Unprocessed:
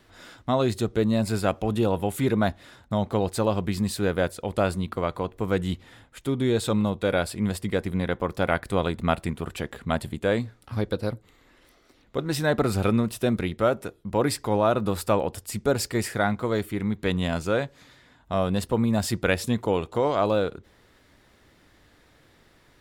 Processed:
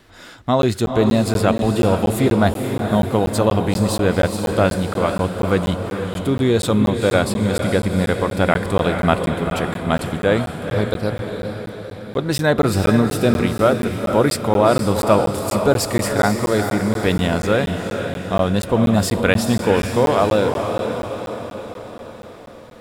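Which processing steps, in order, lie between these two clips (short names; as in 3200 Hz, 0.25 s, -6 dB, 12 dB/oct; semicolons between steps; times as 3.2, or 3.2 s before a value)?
diffused feedback echo 0.463 s, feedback 57%, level -6 dB; crackling interface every 0.24 s, samples 512, zero, from 0.62; gain +6.5 dB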